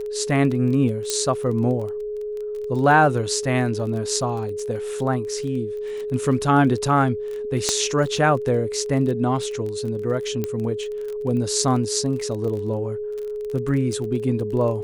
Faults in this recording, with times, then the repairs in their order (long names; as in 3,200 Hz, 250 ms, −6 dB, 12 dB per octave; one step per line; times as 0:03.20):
surface crackle 25 per second −29 dBFS
whistle 420 Hz −26 dBFS
0:01.10: click −8 dBFS
0:07.69: click −6 dBFS
0:10.44: click −12 dBFS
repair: click removal
notch filter 420 Hz, Q 30